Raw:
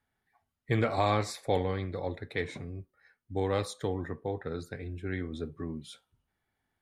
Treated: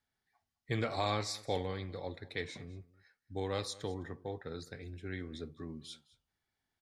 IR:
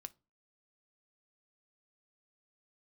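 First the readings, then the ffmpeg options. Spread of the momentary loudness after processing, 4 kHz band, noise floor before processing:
14 LU, +0.5 dB, -83 dBFS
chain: -af "equalizer=f=5k:t=o:w=1.3:g=10,aecho=1:1:209:0.0944,volume=-7dB"

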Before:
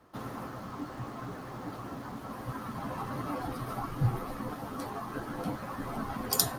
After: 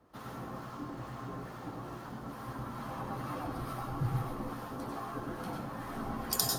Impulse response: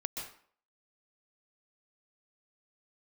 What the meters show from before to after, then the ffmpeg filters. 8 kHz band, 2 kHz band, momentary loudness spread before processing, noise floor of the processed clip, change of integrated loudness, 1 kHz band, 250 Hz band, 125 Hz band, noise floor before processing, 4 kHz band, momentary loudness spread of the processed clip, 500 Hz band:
-2.5 dB, -3.0 dB, 10 LU, -46 dBFS, -2.5 dB, -2.5 dB, -2.5 dB, -2.5 dB, -43 dBFS, -2.0 dB, 9 LU, -2.5 dB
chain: -filter_complex "[0:a]acrossover=split=870[a][b];[a]aeval=exprs='val(0)*(1-0.5/2+0.5/2*cos(2*PI*2.3*n/s))':c=same[c];[b]aeval=exprs='val(0)*(1-0.5/2-0.5/2*cos(2*PI*2.3*n/s))':c=same[d];[c][d]amix=inputs=2:normalize=0[e];[1:a]atrim=start_sample=2205,asetrate=57330,aresample=44100[f];[e][f]afir=irnorm=-1:irlink=0,volume=1dB"

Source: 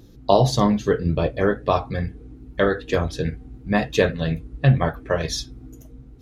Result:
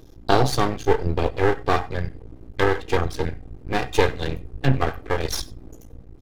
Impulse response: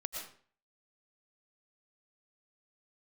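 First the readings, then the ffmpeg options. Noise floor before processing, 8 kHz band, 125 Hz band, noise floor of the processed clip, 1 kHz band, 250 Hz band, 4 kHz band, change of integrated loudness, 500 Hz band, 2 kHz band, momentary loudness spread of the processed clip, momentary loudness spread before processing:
-46 dBFS, 0.0 dB, -3.5 dB, -45 dBFS, +1.0 dB, -4.5 dB, 0.0 dB, -1.5 dB, -1.5 dB, +0.5 dB, 10 LU, 10 LU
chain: -filter_complex "[0:a]aecho=1:1:2.5:0.79,aeval=exprs='max(val(0),0)':c=same,asplit=2[a][b];[1:a]atrim=start_sample=2205,atrim=end_sample=4410[c];[b][c]afir=irnorm=-1:irlink=0,volume=-4dB[d];[a][d]amix=inputs=2:normalize=0,volume=-2dB"

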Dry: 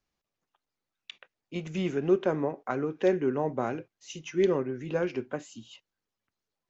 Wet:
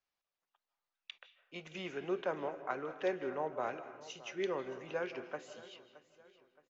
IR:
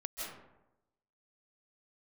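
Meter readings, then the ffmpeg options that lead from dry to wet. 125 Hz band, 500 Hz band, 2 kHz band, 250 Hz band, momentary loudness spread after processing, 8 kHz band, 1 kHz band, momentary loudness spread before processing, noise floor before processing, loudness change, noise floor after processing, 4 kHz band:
-17.5 dB, -10.0 dB, -4.0 dB, -14.0 dB, 16 LU, n/a, -4.5 dB, 19 LU, under -85 dBFS, -10.0 dB, under -85 dBFS, -4.5 dB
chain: -filter_complex "[0:a]acrossover=split=510 6500:gain=0.2 1 0.0891[a][b][c];[a][b][c]amix=inputs=3:normalize=0,aecho=1:1:620|1240|1860:0.126|0.0504|0.0201,asplit=2[d][e];[1:a]atrim=start_sample=2205[f];[e][f]afir=irnorm=-1:irlink=0,volume=-9dB[g];[d][g]amix=inputs=2:normalize=0,volume=-6dB"

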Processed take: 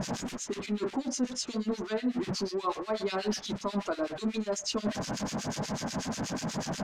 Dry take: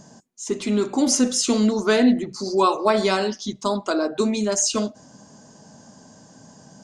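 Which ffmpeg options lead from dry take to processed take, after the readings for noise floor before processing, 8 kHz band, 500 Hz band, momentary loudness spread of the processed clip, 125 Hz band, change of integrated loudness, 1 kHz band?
-50 dBFS, -12.5 dB, -11.0 dB, 3 LU, -3.5 dB, -12.0 dB, -11.0 dB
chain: -filter_complex "[0:a]aeval=exprs='val(0)+0.5*0.0668*sgn(val(0))':c=same,areverse,acompressor=threshold=-26dB:ratio=5,areverse,acrossover=split=1700[a][b];[a]aeval=exprs='val(0)*(1-1/2+1/2*cos(2*PI*8.2*n/s))':c=same[c];[b]aeval=exprs='val(0)*(1-1/2-1/2*cos(2*PI*8.2*n/s))':c=same[d];[c][d]amix=inputs=2:normalize=0,lowpass=5.5k"

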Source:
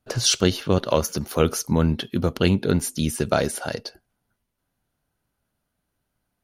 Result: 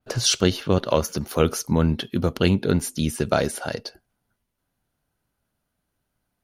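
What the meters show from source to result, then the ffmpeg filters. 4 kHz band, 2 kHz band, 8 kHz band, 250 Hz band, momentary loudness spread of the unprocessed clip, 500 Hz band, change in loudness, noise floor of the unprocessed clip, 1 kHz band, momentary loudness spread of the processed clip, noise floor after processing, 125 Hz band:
-0.5 dB, 0.0 dB, -1.5 dB, 0.0 dB, 7 LU, 0.0 dB, 0.0 dB, -78 dBFS, 0.0 dB, 8 LU, -78 dBFS, 0.0 dB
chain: -af "adynamicequalizer=threshold=0.0126:dfrequency=4800:dqfactor=0.7:tfrequency=4800:tqfactor=0.7:attack=5:release=100:ratio=0.375:range=2:mode=cutabove:tftype=highshelf"

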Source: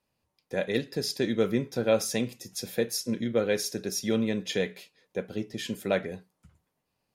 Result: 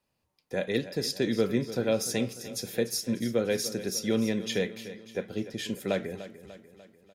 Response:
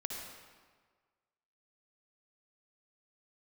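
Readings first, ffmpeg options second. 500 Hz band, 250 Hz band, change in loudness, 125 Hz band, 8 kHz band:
-1.0 dB, 0.0 dB, -0.5 dB, 0.0 dB, 0.0 dB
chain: -filter_complex "[0:a]acrossover=split=480|3000[a][b][c];[b]acompressor=threshold=-30dB:ratio=6[d];[a][d][c]amix=inputs=3:normalize=0,asplit=2[e][f];[f]aecho=0:1:296|592|888|1184|1480:0.2|0.106|0.056|0.0297|0.0157[g];[e][g]amix=inputs=2:normalize=0"

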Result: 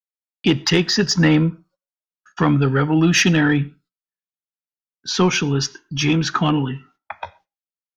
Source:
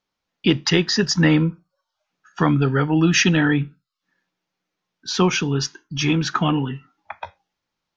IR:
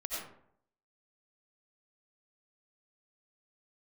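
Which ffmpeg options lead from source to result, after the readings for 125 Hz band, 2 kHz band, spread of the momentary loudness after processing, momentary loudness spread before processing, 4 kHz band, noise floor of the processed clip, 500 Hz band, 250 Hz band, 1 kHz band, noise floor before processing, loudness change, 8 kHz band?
+1.5 dB, +1.5 dB, 18 LU, 18 LU, +1.5 dB, under -85 dBFS, +1.5 dB, +1.5 dB, +1.5 dB, -82 dBFS, +1.5 dB, n/a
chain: -filter_complex "[0:a]acontrast=51,agate=range=-35dB:threshold=-47dB:ratio=16:detection=peak,asplit=2[a][b];[1:a]atrim=start_sample=2205,atrim=end_sample=6174[c];[b][c]afir=irnorm=-1:irlink=0,volume=-24.5dB[d];[a][d]amix=inputs=2:normalize=0,volume=-4dB"

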